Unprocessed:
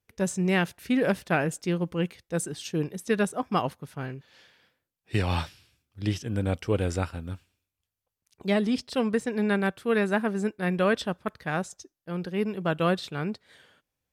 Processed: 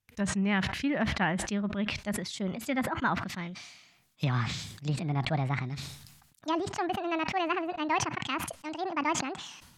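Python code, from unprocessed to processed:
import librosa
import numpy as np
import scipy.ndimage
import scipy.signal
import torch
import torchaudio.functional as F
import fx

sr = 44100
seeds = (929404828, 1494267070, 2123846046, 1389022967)

y = fx.speed_glide(x, sr, from_pct=104, to_pct=185)
y = fx.env_lowpass_down(y, sr, base_hz=2100.0, full_db=-25.0)
y = fx.peak_eq(y, sr, hz=460.0, db=-12.5, octaves=1.1)
y = fx.sustainer(y, sr, db_per_s=54.0)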